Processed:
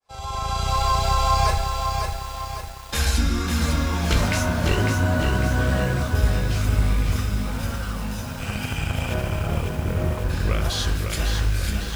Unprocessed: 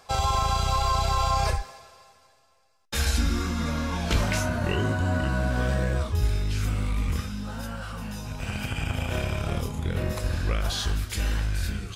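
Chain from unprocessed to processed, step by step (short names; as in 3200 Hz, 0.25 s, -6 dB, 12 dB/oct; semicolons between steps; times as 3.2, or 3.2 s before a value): opening faded in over 0.80 s; 9.14–10.3 LPF 1700 Hz 12 dB/oct; lo-fi delay 0.551 s, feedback 55%, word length 7-bit, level -4.5 dB; gain +3 dB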